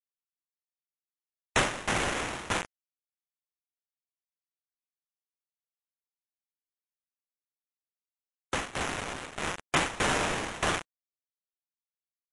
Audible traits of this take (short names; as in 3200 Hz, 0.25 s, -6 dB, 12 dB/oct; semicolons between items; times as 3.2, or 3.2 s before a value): a quantiser's noise floor 6-bit, dither none; tremolo saw down 1.6 Hz, depth 90%; aliases and images of a low sample rate 4700 Hz, jitter 20%; MP3